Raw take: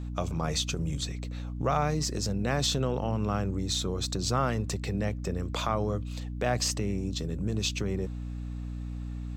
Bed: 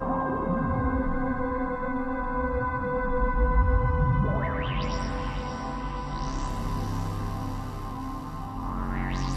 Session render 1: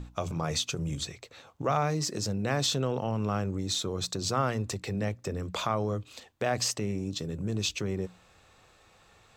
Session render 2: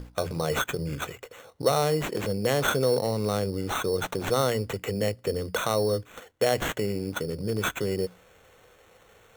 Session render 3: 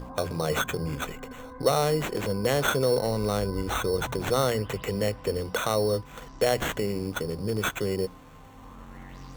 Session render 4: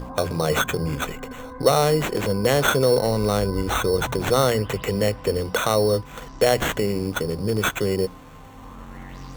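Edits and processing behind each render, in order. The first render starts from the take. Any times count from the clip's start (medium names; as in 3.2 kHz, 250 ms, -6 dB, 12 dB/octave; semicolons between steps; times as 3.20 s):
hum notches 60/120/180/240/300 Hz
small resonant body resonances 480/2000/3400 Hz, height 11 dB, ringing for 20 ms; sample-and-hold 9×
add bed -15 dB
trim +5.5 dB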